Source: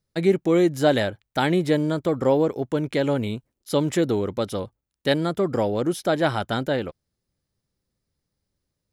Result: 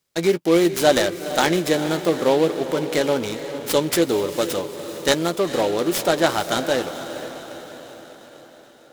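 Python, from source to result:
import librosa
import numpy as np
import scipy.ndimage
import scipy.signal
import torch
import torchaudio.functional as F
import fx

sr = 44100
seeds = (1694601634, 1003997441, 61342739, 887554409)

p1 = scipy.signal.sosfilt(scipy.signal.butter(2, 98.0, 'highpass', fs=sr, output='sos'), x)
p2 = fx.bass_treble(p1, sr, bass_db=-9, treble_db=10)
p3 = fx.doubler(p2, sr, ms=12.0, db=-10.5)
p4 = p3 + fx.echo_diffused(p3, sr, ms=461, feedback_pct=56, wet_db=-11.0, dry=0)
p5 = fx.noise_mod_delay(p4, sr, seeds[0], noise_hz=2700.0, depth_ms=0.032)
y = p5 * librosa.db_to_amplitude(3.0)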